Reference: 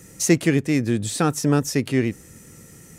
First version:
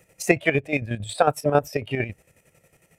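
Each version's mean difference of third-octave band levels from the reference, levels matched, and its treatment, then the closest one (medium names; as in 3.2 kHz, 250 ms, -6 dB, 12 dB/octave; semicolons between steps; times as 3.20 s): 8.0 dB: fifteen-band graphic EQ 250 Hz -9 dB, 630 Hz +11 dB, 2.5 kHz +12 dB, 6.3 kHz -6 dB; spectral noise reduction 12 dB; peaking EQ 670 Hz +4.5 dB 0.93 oct; square tremolo 11 Hz, depth 60%, duty 45%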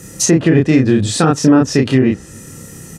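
4.5 dB: doubling 31 ms -3 dB; low-pass that closes with the level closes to 1.7 kHz, closed at -12 dBFS; band-stop 2.2 kHz, Q 7; loudness maximiser +10.5 dB; trim -1 dB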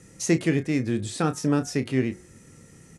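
2.5 dB: elliptic low-pass 11 kHz, stop band 60 dB; treble shelf 5.1 kHz -6.5 dB; doubling 31 ms -11.5 dB; de-hum 180.2 Hz, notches 12; trim -3 dB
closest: third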